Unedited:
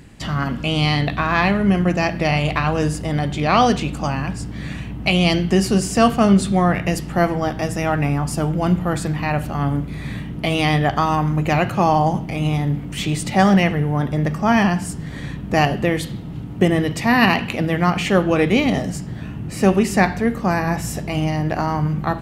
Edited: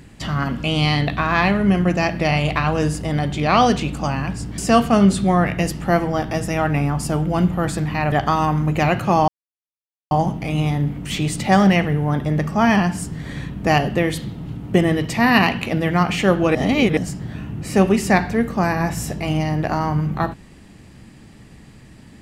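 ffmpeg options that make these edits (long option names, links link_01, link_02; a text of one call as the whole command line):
ffmpeg -i in.wav -filter_complex "[0:a]asplit=6[link_01][link_02][link_03][link_04][link_05][link_06];[link_01]atrim=end=4.582[link_07];[link_02]atrim=start=5.858:end=9.402[link_08];[link_03]atrim=start=10.818:end=11.98,asetpts=PTS-STARTPTS,afade=type=out:start_time=1.158:duration=0.004:curve=hsin,apad=pad_dur=0.83[link_09];[link_04]atrim=start=11.98:end=18.422,asetpts=PTS-STARTPTS,afade=type=in:duration=0.004:curve=hsin[link_10];[link_05]atrim=start=18.418:end=18.842,asetpts=PTS-STARTPTS,areverse[link_11];[link_06]atrim=start=18.838[link_12];[link_07][link_08]acrossfade=duration=0.004:curve1=hsin:curve2=hsin[link_13];[link_09][link_10]concat=n=2:v=0:a=1[link_14];[link_13][link_14]acrossfade=duration=0.004:curve1=hsin:curve2=hsin[link_15];[link_15][link_11]acrossfade=duration=0.004:curve1=hsin:curve2=hsin[link_16];[link_16][link_12]acrossfade=duration=0.004:curve1=hsin:curve2=hsin" out.wav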